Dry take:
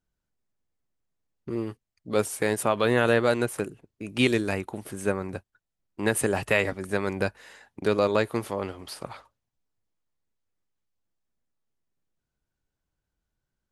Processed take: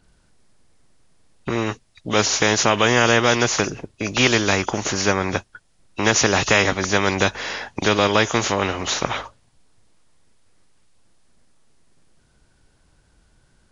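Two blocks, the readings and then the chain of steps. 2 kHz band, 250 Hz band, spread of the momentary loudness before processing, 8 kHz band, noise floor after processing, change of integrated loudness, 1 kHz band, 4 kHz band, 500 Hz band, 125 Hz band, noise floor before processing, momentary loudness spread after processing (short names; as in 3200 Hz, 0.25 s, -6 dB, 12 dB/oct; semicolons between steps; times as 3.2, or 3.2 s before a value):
+10.0 dB, +5.5 dB, 15 LU, +14.0 dB, -60 dBFS, +7.5 dB, +10.5 dB, +15.0 dB, +4.5 dB, +7.5 dB, -84 dBFS, 12 LU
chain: nonlinear frequency compression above 2500 Hz 1.5:1; spectral compressor 2:1; gain +7.5 dB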